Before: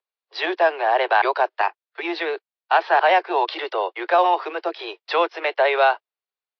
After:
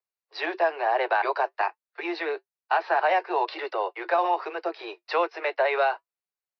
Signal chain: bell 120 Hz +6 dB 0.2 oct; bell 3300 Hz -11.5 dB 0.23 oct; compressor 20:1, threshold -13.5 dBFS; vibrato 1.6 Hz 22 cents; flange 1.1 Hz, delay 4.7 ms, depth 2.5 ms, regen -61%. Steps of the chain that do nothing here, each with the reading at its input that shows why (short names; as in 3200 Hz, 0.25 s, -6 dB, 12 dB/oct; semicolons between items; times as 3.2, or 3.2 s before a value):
bell 120 Hz: input band starts at 290 Hz